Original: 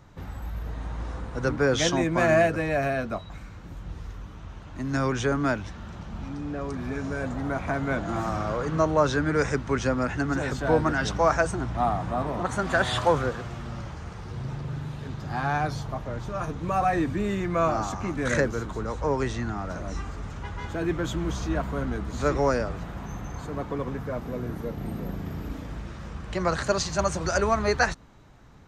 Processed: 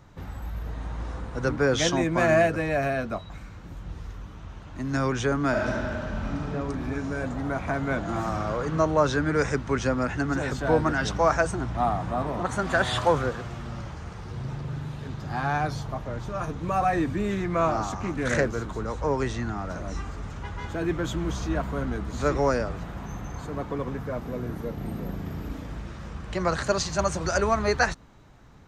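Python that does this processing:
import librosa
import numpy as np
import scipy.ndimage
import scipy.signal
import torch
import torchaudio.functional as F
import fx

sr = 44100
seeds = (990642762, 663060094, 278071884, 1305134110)

y = fx.reverb_throw(x, sr, start_s=5.49, length_s=1.03, rt60_s=2.6, drr_db=-4.0)
y = fx.doppler_dist(y, sr, depth_ms=0.18, at=(17.31, 18.66))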